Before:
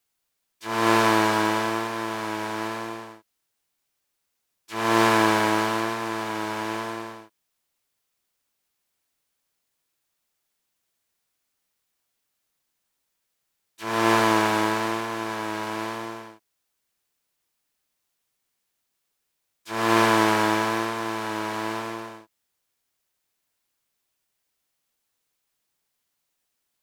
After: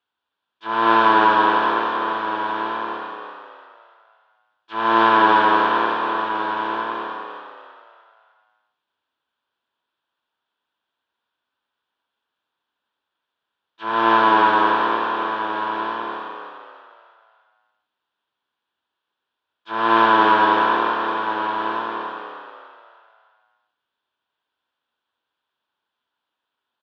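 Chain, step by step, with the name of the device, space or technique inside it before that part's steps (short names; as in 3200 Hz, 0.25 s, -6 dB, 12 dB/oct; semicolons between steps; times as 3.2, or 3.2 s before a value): frequency-shifting delay pedal into a guitar cabinet (frequency-shifting echo 0.298 s, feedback 42%, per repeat +81 Hz, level -6 dB; speaker cabinet 99–3400 Hz, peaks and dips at 120 Hz -9 dB, 180 Hz -7 dB, 970 Hz +9 dB, 1500 Hz +8 dB, 2100 Hz -9 dB, 3400 Hz +7 dB)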